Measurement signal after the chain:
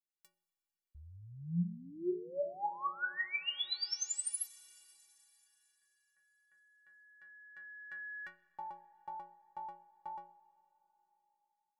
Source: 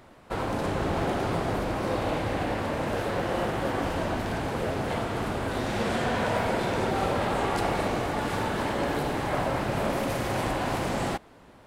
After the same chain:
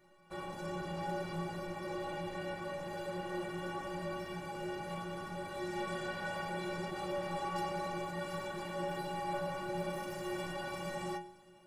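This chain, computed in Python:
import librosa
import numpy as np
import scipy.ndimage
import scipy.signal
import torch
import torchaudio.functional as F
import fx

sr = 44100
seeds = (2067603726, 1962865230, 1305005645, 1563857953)

y = fx.stiff_resonator(x, sr, f0_hz=170.0, decay_s=0.49, stiffness=0.03)
y = fx.rev_schroeder(y, sr, rt60_s=3.8, comb_ms=30, drr_db=17.5)
y = F.gain(torch.from_numpy(y), 2.5).numpy()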